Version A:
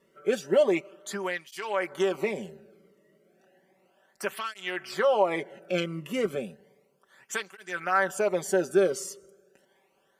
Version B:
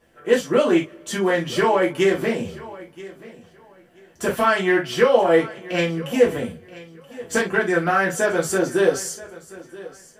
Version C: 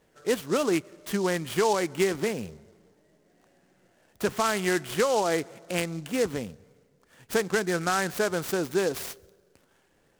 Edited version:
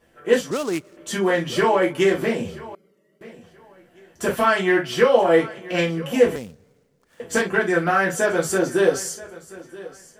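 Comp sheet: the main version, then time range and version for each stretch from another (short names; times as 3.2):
B
0.51–0.97 from C
2.75–3.21 from A
6.36–7.2 from C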